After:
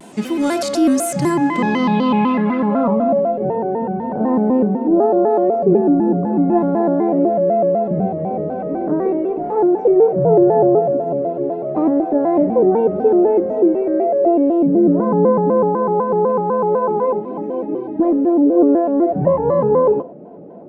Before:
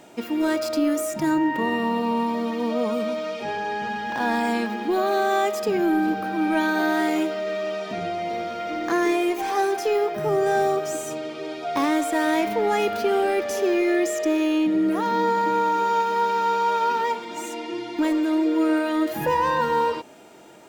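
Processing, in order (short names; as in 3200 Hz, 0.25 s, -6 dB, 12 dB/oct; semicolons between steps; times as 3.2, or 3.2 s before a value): bell 190 Hz +9.5 dB 1.1 oct; in parallel at -3 dB: limiter -20 dBFS, peak gain reduction 10.5 dB; on the sum: short-mantissa float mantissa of 6-bit; low-pass sweep 9200 Hz -> 550 Hz, 1.39–3.33; on a send at -12 dB: reverb, pre-delay 3 ms; on the sum: shaped vibrato square 4 Hz, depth 160 cents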